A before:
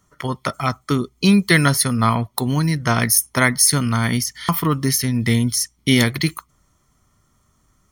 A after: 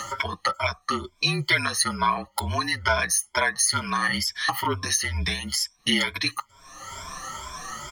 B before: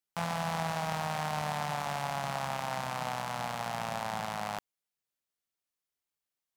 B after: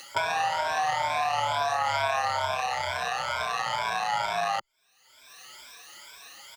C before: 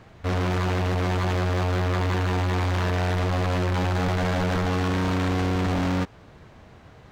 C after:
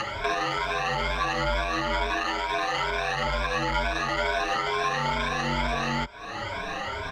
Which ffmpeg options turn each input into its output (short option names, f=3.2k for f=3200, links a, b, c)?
-filter_complex "[0:a]afftfilt=real='re*pow(10,17/40*sin(2*PI*(1.7*log(max(b,1)*sr/1024/100)/log(2)-(2.2)*(pts-256)/sr)))':imag='im*pow(10,17/40*sin(2*PI*(1.7*log(max(b,1)*sr/1024/100)/log(2)-(2.2)*(pts-256)/sr)))':win_size=1024:overlap=0.75,lowshelf=f=77:g=-5.5,afreqshift=-40,asplit=2[a][b];[b]acompressor=mode=upward:threshold=-19dB:ratio=2.5,volume=2.5dB[c];[a][c]amix=inputs=2:normalize=0,acrossover=split=570 6700:gain=0.224 1 0.2[d][e][f];[d][e][f]amix=inputs=3:normalize=0,acompressor=threshold=-33dB:ratio=2.5,asplit=2[g][h];[h]adelay=6.8,afreqshift=-0.47[i];[g][i]amix=inputs=2:normalize=1,volume=7dB"